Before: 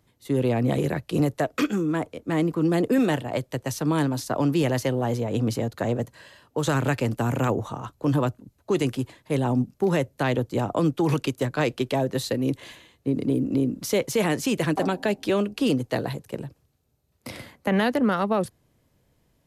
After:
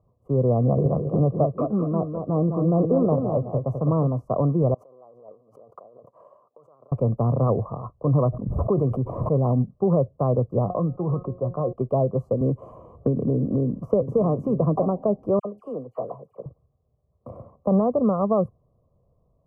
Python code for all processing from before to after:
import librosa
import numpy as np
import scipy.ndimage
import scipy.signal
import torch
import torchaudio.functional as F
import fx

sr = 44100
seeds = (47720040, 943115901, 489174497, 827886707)

y = fx.chain(x, sr, fx.echo_feedback(ms=210, feedback_pct=24, wet_db=-6),
    fx.doppler_dist(depth_ms=0.13), at=(0.64, 4.07))
y = fx.chain(y, sr, fx.over_compress(threshold_db=-37.0, ratio=-1.0),
    fx.power_curve(exponent=1.4),
    fx.bessel_highpass(hz=470.0, order=2), at=(4.74, 6.92))
y = fx.chain(y, sr, fx.notch(hz=7200.0, q=16.0),
    fx.pre_swell(db_per_s=41.0), at=(8.16, 9.5))
y = fx.chain(y, sr, fx.lowpass(hz=1800.0, slope=24),
    fx.comb_fb(f0_hz=180.0, decay_s=0.16, harmonics='all', damping=0.0, mix_pct=70),
    fx.env_flatten(amount_pct=50), at=(10.66, 11.73))
y = fx.chain(y, sr, fx.echo_single(ms=928, db=-13.5),
    fx.band_squash(depth_pct=100), at=(12.41, 14.79))
y = fx.chain(y, sr, fx.highpass(hz=830.0, slope=6),
    fx.dispersion(late='lows', ms=61.0, hz=1700.0), at=(15.39, 16.46))
y = scipy.signal.sosfilt(scipy.signal.ellip(4, 1.0, 40, 1100.0, 'lowpass', fs=sr, output='sos'), y)
y = y + 0.59 * np.pad(y, (int(1.7 * sr / 1000.0), 0))[:len(y)]
y = fx.dynamic_eq(y, sr, hz=180.0, q=0.73, threshold_db=-36.0, ratio=4.0, max_db=5)